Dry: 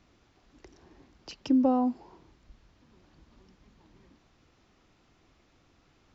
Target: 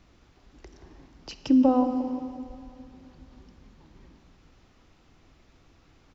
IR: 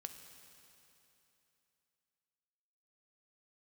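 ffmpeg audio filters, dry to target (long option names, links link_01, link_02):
-filter_complex "[0:a]asplit=2[link_01][link_02];[link_02]adelay=177,lowpass=frequency=1700:poles=1,volume=-9.5dB,asplit=2[link_03][link_04];[link_04]adelay=177,lowpass=frequency=1700:poles=1,volume=0.54,asplit=2[link_05][link_06];[link_06]adelay=177,lowpass=frequency=1700:poles=1,volume=0.54,asplit=2[link_07][link_08];[link_08]adelay=177,lowpass=frequency=1700:poles=1,volume=0.54,asplit=2[link_09][link_10];[link_10]adelay=177,lowpass=frequency=1700:poles=1,volume=0.54,asplit=2[link_11][link_12];[link_12]adelay=177,lowpass=frequency=1700:poles=1,volume=0.54[link_13];[link_01][link_03][link_05][link_07][link_09][link_11][link_13]amix=inputs=7:normalize=0,asplit=2[link_14][link_15];[1:a]atrim=start_sample=2205,lowshelf=frequency=76:gain=11[link_16];[link_15][link_16]afir=irnorm=-1:irlink=0,volume=8dB[link_17];[link_14][link_17]amix=inputs=2:normalize=0,volume=-4.5dB"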